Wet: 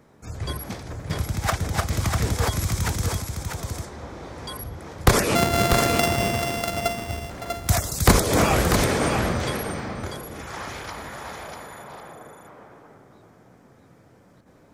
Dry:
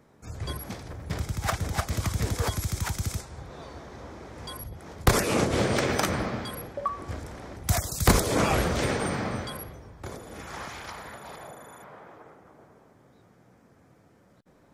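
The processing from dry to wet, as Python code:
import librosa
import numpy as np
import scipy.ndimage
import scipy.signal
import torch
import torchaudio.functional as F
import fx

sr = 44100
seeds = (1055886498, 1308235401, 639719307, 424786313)

p1 = fx.sample_sort(x, sr, block=64, at=(5.35, 7.3))
p2 = p1 + fx.echo_single(p1, sr, ms=644, db=-5.5, dry=0)
y = p2 * librosa.db_to_amplitude(4.0)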